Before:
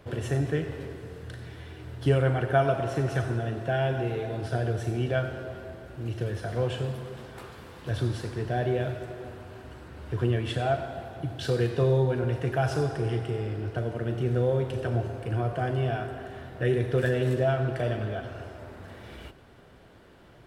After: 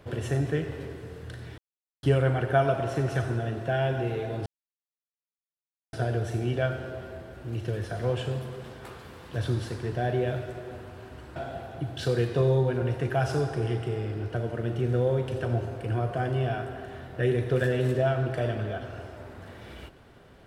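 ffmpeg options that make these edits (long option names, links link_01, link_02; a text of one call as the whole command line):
ffmpeg -i in.wav -filter_complex "[0:a]asplit=5[link_01][link_02][link_03][link_04][link_05];[link_01]atrim=end=1.58,asetpts=PTS-STARTPTS,afade=type=out:start_time=1.576:duration=0.004:curve=hsin[link_06];[link_02]atrim=start=1.58:end=2.03,asetpts=PTS-STARTPTS,volume=0[link_07];[link_03]atrim=start=2.03:end=4.46,asetpts=PTS-STARTPTS,afade=type=in:duration=0.004:curve=hsin,afade=type=out:start_time=2.426:duration=0.004:curve=hsin,apad=pad_dur=1.47[link_08];[link_04]atrim=start=4.46:end=9.892,asetpts=PTS-STARTPTS,afade=type=in:duration=0.004:curve=hsin[link_09];[link_05]atrim=start=10.778[link_10];[link_06][link_07][link_08][link_09]concat=n=4:v=0:a=1[link_11];[link_11][link_10]acrossfade=duration=0.004:curve1=hsin:curve2=hsin" out.wav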